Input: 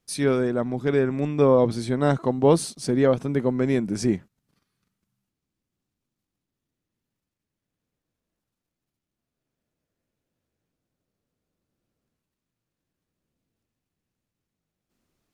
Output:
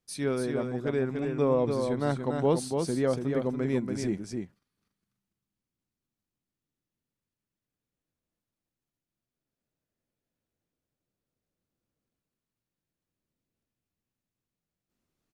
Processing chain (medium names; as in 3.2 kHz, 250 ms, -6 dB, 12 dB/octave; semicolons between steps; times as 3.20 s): delay 286 ms -5 dB; trim -7.5 dB